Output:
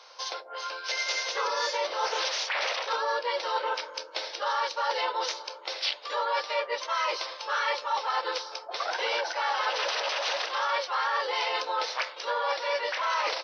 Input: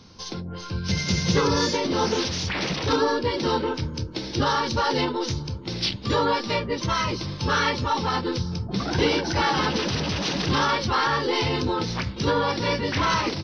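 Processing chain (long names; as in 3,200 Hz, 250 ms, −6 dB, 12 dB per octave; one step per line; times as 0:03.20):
elliptic high-pass filter 550 Hz, stop band 70 dB
high-shelf EQ 4,800 Hz −9.5 dB
reversed playback
downward compressor, threshold −32 dBFS, peak gain reduction 11 dB
reversed playback
level +6 dB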